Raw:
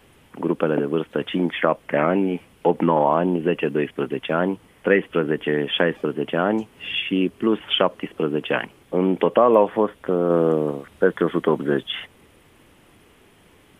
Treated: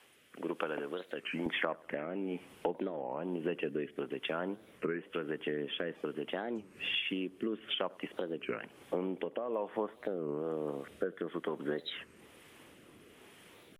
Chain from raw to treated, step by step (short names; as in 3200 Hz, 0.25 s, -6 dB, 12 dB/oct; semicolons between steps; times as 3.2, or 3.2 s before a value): HPF 1200 Hz 6 dB/oct, from 1.46 s 240 Hz; compressor 6:1, threshold -31 dBFS, peak gain reduction 18.5 dB; rotary speaker horn 1.1 Hz; analogue delay 99 ms, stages 1024, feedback 48%, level -22.5 dB; record warp 33 1/3 rpm, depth 250 cents